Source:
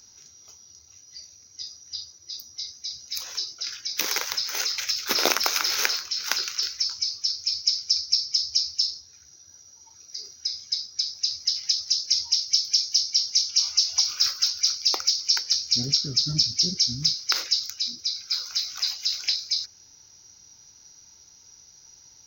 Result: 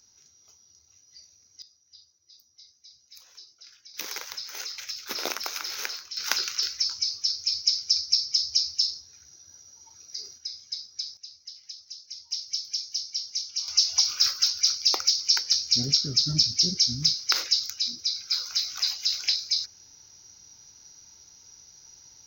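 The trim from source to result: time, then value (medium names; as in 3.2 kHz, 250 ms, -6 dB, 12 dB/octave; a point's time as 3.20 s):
-8 dB
from 1.62 s -18 dB
from 3.94 s -9 dB
from 6.17 s -0.5 dB
from 10.38 s -7 dB
from 11.17 s -18 dB
from 12.31 s -9 dB
from 13.68 s 0 dB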